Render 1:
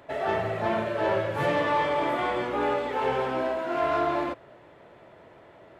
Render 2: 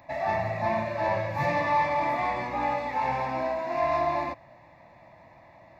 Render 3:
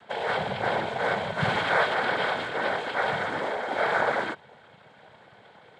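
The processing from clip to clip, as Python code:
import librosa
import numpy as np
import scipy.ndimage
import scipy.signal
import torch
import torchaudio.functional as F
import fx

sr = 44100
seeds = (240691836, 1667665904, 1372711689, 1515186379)

y1 = fx.fixed_phaser(x, sr, hz=2100.0, stages=8)
y1 = y1 * 10.0 ** (2.5 / 20.0)
y2 = fx.noise_vocoder(y1, sr, seeds[0], bands=6)
y2 = fx.small_body(y2, sr, hz=(1500.0, 2200.0, 3200.0), ring_ms=25, db=8)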